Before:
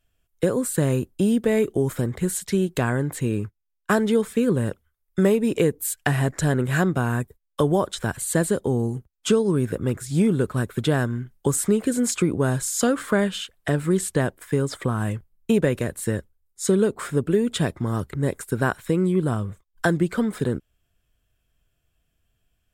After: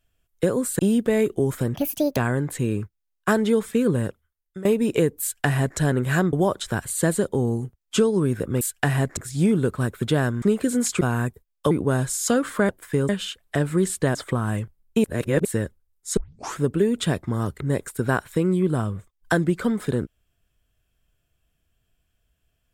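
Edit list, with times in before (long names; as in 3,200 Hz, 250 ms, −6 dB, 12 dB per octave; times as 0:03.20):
0:00.79–0:01.17: remove
0:02.12–0:02.79: play speed 156%
0:04.62–0:05.27: fade out, to −21 dB
0:05.84–0:06.40: duplicate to 0:09.93
0:06.95–0:07.65: move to 0:12.24
0:11.18–0:11.65: remove
0:14.28–0:14.68: move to 0:13.22
0:15.57–0:15.98: reverse
0:16.70: tape start 0.41 s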